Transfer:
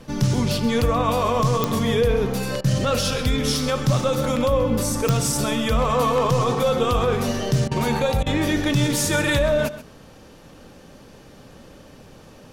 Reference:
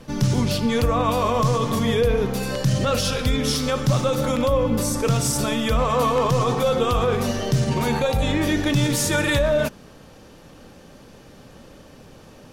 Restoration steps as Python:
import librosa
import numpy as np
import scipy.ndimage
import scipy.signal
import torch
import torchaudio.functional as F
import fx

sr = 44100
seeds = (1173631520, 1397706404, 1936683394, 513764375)

y = fx.fix_declick_ar(x, sr, threshold=10.0)
y = fx.fix_interpolate(y, sr, at_s=(2.61, 7.68, 8.23), length_ms=32.0)
y = fx.fix_echo_inverse(y, sr, delay_ms=131, level_db=-14.5)